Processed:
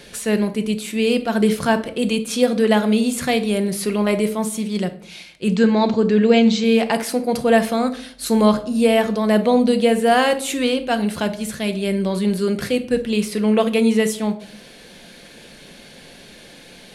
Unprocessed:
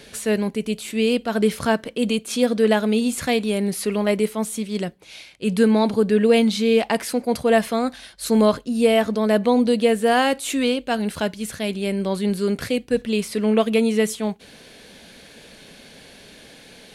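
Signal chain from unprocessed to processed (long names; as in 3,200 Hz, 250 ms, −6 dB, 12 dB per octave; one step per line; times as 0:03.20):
0:05.48–0:06.64: Butterworth low-pass 7,900 Hz 96 dB per octave
rectangular room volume 750 cubic metres, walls furnished, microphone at 0.89 metres
level +1.5 dB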